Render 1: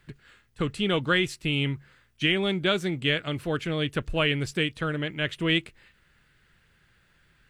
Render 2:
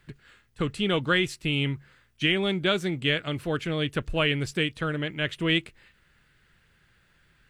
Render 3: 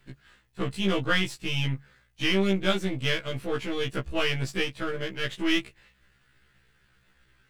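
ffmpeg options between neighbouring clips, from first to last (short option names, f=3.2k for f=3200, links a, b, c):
-af anull
-af "aeval=exprs='if(lt(val(0),0),0.447*val(0),val(0))':c=same,afftfilt=real='re*1.73*eq(mod(b,3),0)':imag='im*1.73*eq(mod(b,3),0)':win_size=2048:overlap=0.75,volume=3.5dB"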